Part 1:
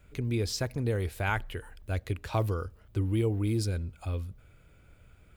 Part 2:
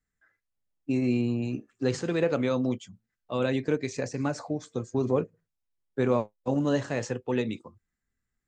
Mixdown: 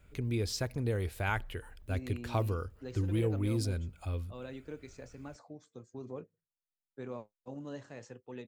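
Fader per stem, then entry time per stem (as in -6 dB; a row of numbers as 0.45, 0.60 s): -3.0, -17.5 dB; 0.00, 1.00 s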